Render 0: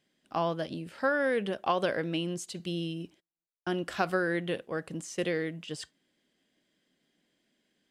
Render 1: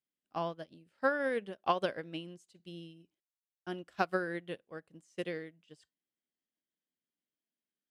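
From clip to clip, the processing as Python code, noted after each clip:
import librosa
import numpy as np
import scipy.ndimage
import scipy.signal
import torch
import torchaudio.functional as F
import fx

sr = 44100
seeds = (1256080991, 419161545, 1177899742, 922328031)

y = fx.upward_expand(x, sr, threshold_db=-40.0, expansion=2.5)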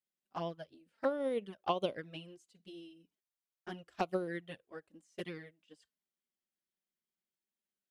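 y = fx.env_flanger(x, sr, rest_ms=5.3, full_db=-30.0)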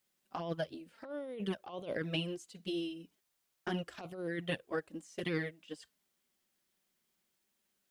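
y = fx.over_compress(x, sr, threshold_db=-45.0, ratio=-1.0)
y = F.gain(torch.from_numpy(y), 7.0).numpy()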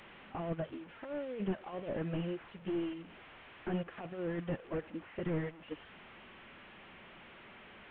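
y = fx.delta_mod(x, sr, bps=16000, step_db=-49.5)
y = F.gain(torch.from_numpy(y), 2.0).numpy()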